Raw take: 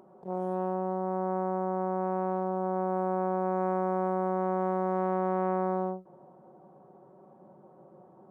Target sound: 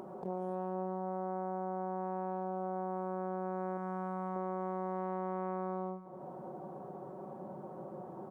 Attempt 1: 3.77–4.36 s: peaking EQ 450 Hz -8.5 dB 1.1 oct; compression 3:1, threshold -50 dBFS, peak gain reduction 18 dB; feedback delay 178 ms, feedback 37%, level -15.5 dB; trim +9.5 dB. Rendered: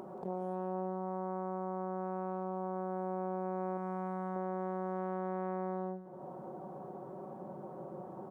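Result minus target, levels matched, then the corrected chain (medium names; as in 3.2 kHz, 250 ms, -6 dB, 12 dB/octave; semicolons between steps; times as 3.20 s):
echo 81 ms early
3.77–4.36 s: peaking EQ 450 Hz -8.5 dB 1.1 oct; compression 3:1, threshold -50 dBFS, peak gain reduction 18 dB; feedback delay 259 ms, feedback 37%, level -15.5 dB; trim +9.5 dB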